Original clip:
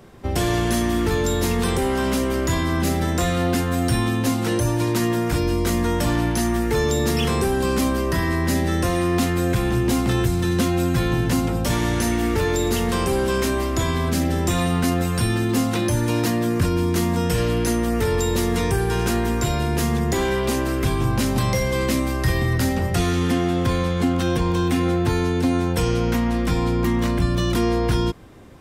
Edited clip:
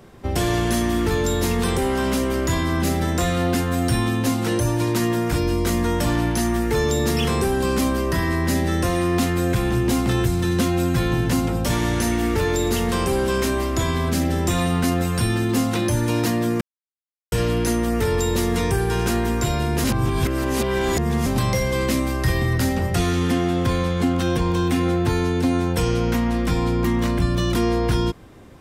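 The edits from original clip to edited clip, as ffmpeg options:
-filter_complex "[0:a]asplit=5[s0][s1][s2][s3][s4];[s0]atrim=end=16.61,asetpts=PTS-STARTPTS,afade=t=out:st=16.606:d=0.004:c=hsin[s5];[s1]atrim=start=16.61:end=17.32,asetpts=PTS-STARTPTS,volume=0[s6];[s2]atrim=start=17.32:end=19.842,asetpts=PTS-STARTPTS,afade=t=in:d=0.004:c=hsin[s7];[s3]atrim=start=19.838:end=21.262,asetpts=PTS-STARTPTS,areverse[s8];[s4]atrim=start=21.258[s9];[s5][s6][s7]concat=n=3:v=0:a=1[s10];[s10][s8]acrossfade=d=0.004:c1=hsin:c2=hsin[s11];[s11][s9]acrossfade=d=0.004:c1=hsin:c2=hsin"

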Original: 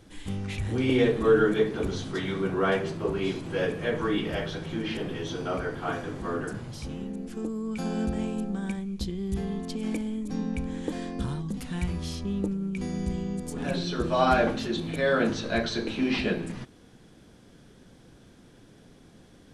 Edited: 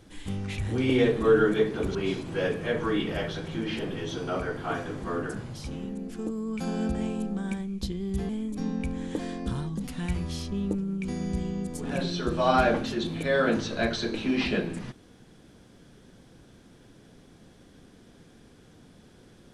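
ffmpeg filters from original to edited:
-filter_complex "[0:a]asplit=3[s0][s1][s2];[s0]atrim=end=1.952[s3];[s1]atrim=start=3.128:end=9.472[s4];[s2]atrim=start=10.018[s5];[s3][s4]acrossfade=d=0.004:c1=hsin:c2=hsin[s6];[s6][s5]acrossfade=d=0.004:c1=hsin:c2=hsin"

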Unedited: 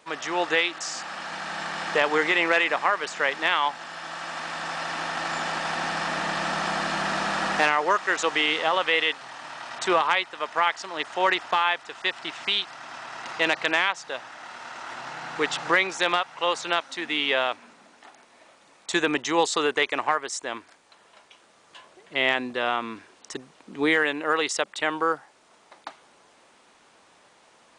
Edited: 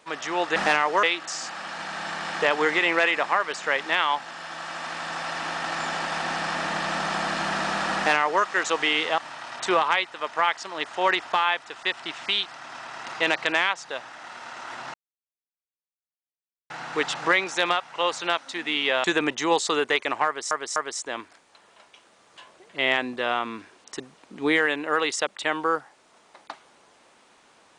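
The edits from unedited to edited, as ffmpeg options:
-filter_complex "[0:a]asplit=8[s0][s1][s2][s3][s4][s5][s6][s7];[s0]atrim=end=0.562[s8];[s1]atrim=start=7.488:end=7.962[s9];[s2]atrim=start=0.558:end=8.712[s10];[s3]atrim=start=9.368:end=15.13,asetpts=PTS-STARTPTS,afade=t=out:st=5.758:d=0.004:c=hsin,apad=pad_dur=1.76[s11];[s4]atrim=start=15.13:end=17.472,asetpts=PTS-STARTPTS,afade=t=in:d=0.004:c=hsin[s12];[s5]atrim=start=18.908:end=20.382[s13];[s6]atrim=start=20.128:end=20.382[s14];[s7]atrim=start=20.128[s15];[s8][s9]acrossfade=d=0.004:c1=hsin:c2=hsin[s16];[s16][s10]acrossfade=d=0.004:c1=hsin:c2=hsin[s17];[s11][s12]concat=n=2:v=0:a=1[s18];[s17][s18]acrossfade=d=0.004:c1=hsin:c2=hsin[s19];[s19][s13]acrossfade=d=0.004:c1=hsin:c2=hsin[s20];[s20][s14]acrossfade=d=0.004:c1=hsin:c2=hsin[s21];[s21][s15]acrossfade=d=0.004:c1=hsin:c2=hsin"

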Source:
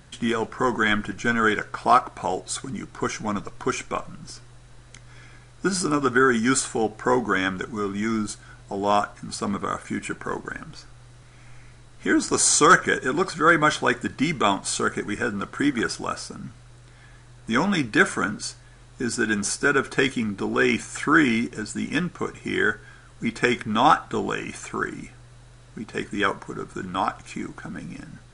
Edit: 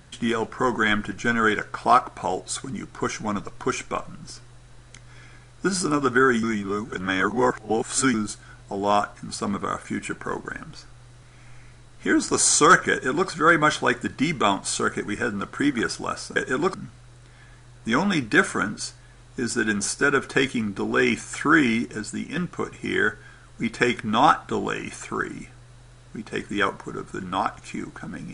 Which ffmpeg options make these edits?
-filter_complex "[0:a]asplit=6[s0][s1][s2][s3][s4][s5];[s0]atrim=end=6.432[s6];[s1]atrim=start=6.428:end=8.142,asetpts=PTS-STARTPTS,areverse[s7];[s2]atrim=start=8.138:end=16.362[s8];[s3]atrim=start=12.908:end=13.292[s9];[s4]atrim=start=16.358:end=21.98,asetpts=PTS-STARTPTS,afade=t=out:st=5.272:d=0.35:c=qsin:silence=0.334965[s10];[s5]atrim=start=21.98,asetpts=PTS-STARTPTS,afade=t=in:d=0.004:c=hsin:silence=0.334965[s11];[s6][s7]acrossfade=d=0.004:c1=hsin:c2=hsin[s12];[s12][s8]acrossfade=d=0.004:c1=hsin:c2=hsin[s13];[s13][s9]acrossfade=d=0.004:c1=hsin:c2=hsin[s14];[s10][s11]concat=n=2:v=0:a=1[s15];[s14][s15]acrossfade=d=0.004:c1=hsin:c2=hsin"

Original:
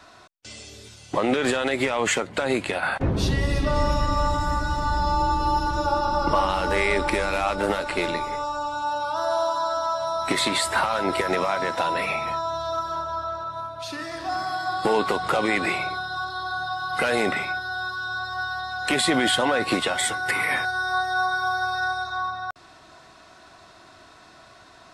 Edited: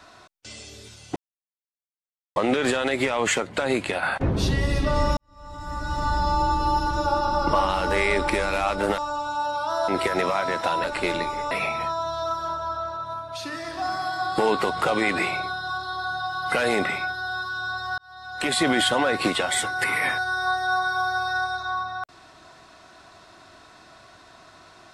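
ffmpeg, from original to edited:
-filter_complex "[0:a]asplit=8[s0][s1][s2][s3][s4][s5][s6][s7];[s0]atrim=end=1.16,asetpts=PTS-STARTPTS,afade=t=out:st=1.156:d=0.004:c=hsin,apad=pad_dur=1.2[s8];[s1]atrim=start=1.16:end=3.97,asetpts=PTS-STARTPTS,afade=t=in:d=0.004:c=hsin,afade=t=out:st=2.806:d=0.004:c=hsin[s9];[s2]atrim=start=3.97:end=7.782,asetpts=PTS-STARTPTS,afade=t=in:d=0.86:c=qua[s10];[s3]atrim=start=8.448:end=9.352[s11];[s4]atrim=start=11.018:end=11.982[s12];[s5]atrim=start=7.778:end=8.452[s13];[s6]atrim=start=11.978:end=18.45,asetpts=PTS-STARTPTS,afade=t=out:st=6.468:d=0.004:c=hsin[s14];[s7]atrim=start=18.45,asetpts=PTS-STARTPTS,afade=t=in:d=0.67[s15];[s8][s9][s10]concat=n=3:v=0:a=1[s16];[s16][s11]acrossfade=d=0.004:c1=hsin:c2=hsin[s17];[s17][s12]acrossfade=d=0.004:c1=hsin:c2=hsin[s18];[s18][s13]acrossfade=d=0.004:c1=hsin:c2=hsin[s19];[s14][s15]concat=n=2:v=0:a=1[s20];[s19][s20]acrossfade=d=0.004:c1=hsin:c2=hsin"

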